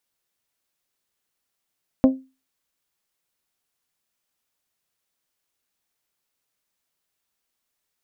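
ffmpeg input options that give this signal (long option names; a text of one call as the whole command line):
ffmpeg -f lavfi -i "aevalsrc='0.398*pow(10,-3*t/0.29)*sin(2*PI*263*t)+0.178*pow(10,-3*t/0.179)*sin(2*PI*526*t)+0.0794*pow(10,-3*t/0.157)*sin(2*PI*631.2*t)+0.0355*pow(10,-3*t/0.134)*sin(2*PI*789*t)+0.0158*pow(10,-3*t/0.11)*sin(2*PI*1052*t)':duration=0.89:sample_rate=44100" out.wav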